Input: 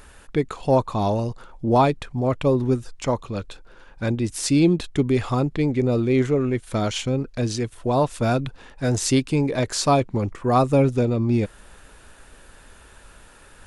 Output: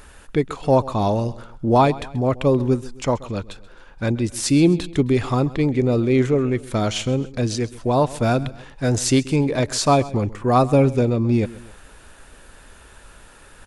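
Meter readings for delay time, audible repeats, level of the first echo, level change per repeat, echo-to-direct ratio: 132 ms, 2, −19.0 dB, −6.5 dB, −18.0 dB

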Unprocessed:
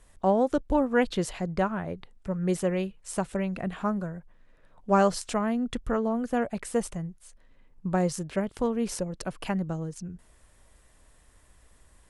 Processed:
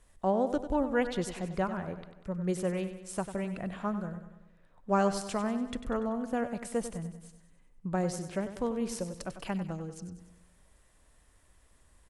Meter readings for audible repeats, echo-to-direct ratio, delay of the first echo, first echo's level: 5, −9.5 dB, 96 ms, −11.0 dB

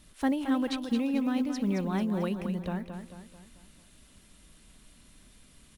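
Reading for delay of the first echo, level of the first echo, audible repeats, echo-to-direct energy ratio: 221 ms, −8.0 dB, 5, −7.0 dB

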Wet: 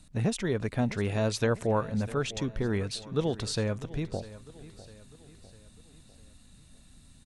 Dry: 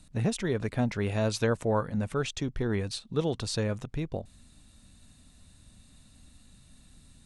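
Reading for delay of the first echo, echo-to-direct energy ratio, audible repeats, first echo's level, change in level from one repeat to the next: 651 ms, −16.0 dB, 3, −17.0 dB, −6.0 dB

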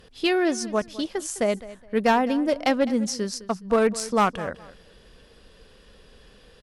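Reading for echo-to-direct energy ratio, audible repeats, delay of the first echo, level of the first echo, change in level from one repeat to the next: −17.5 dB, 2, 208 ms, −17.5 dB, −12.0 dB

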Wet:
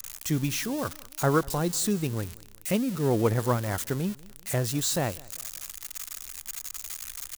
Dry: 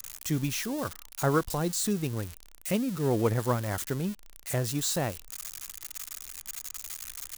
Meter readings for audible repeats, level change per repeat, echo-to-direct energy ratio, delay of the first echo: 2, −8.0 dB, −22.0 dB, 194 ms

